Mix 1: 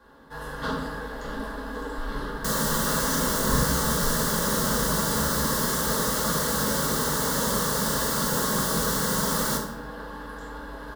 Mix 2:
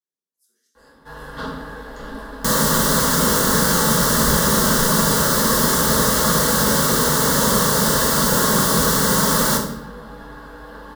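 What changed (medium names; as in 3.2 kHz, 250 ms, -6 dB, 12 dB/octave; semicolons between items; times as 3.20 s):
speech -9.0 dB; first sound: entry +0.75 s; second sound +8.5 dB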